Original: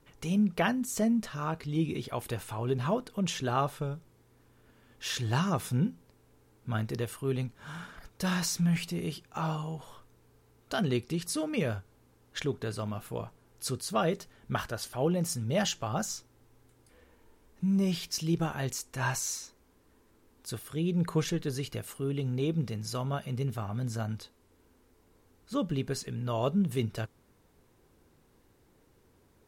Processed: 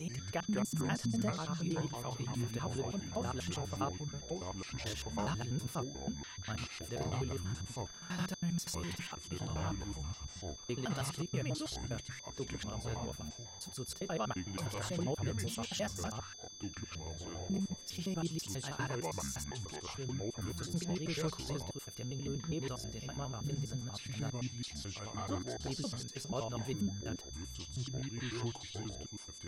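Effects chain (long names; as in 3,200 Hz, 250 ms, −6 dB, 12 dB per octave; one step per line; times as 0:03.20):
slices reordered back to front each 81 ms, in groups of 4
steady tone 6,200 Hz −43 dBFS
delay with pitch and tempo change per echo 86 ms, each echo −5 semitones, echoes 2
level −9 dB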